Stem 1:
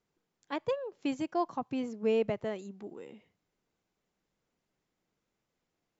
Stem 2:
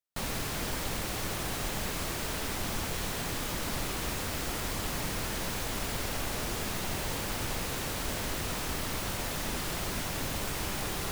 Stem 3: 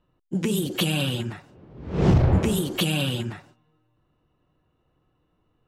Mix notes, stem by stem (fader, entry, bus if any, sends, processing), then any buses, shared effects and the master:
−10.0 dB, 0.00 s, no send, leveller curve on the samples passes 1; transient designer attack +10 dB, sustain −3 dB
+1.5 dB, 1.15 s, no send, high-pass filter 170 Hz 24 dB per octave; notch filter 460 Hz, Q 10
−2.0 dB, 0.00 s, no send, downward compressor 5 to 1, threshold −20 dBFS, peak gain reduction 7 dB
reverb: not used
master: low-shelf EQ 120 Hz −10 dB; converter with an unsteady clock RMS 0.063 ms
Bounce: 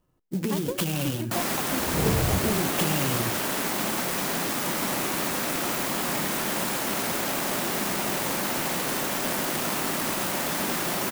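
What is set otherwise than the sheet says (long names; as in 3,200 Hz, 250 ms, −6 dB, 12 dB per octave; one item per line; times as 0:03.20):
stem 2 +1.5 dB → +8.5 dB
master: missing low-shelf EQ 120 Hz −10 dB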